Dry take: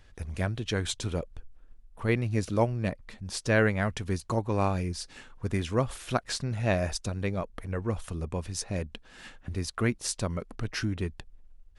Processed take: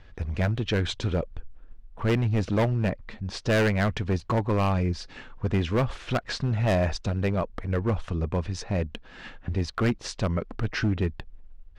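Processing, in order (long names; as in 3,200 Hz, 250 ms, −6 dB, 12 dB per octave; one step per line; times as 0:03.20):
high-frequency loss of the air 170 metres
gain into a clipping stage and back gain 25.5 dB
level +6.5 dB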